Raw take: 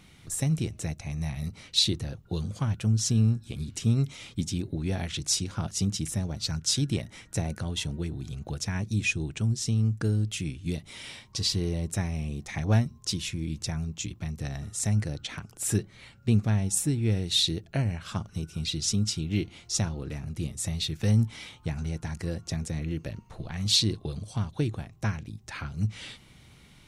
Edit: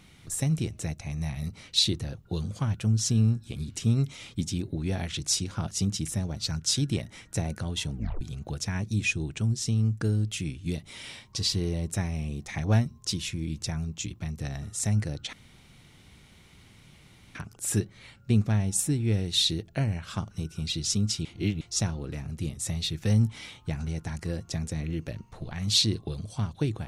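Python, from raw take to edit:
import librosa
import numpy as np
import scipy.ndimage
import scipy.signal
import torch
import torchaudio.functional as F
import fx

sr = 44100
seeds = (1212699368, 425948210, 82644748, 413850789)

y = fx.edit(x, sr, fx.tape_stop(start_s=7.92, length_s=0.29),
    fx.insert_room_tone(at_s=15.33, length_s=2.02),
    fx.reverse_span(start_s=19.23, length_s=0.36), tone=tone)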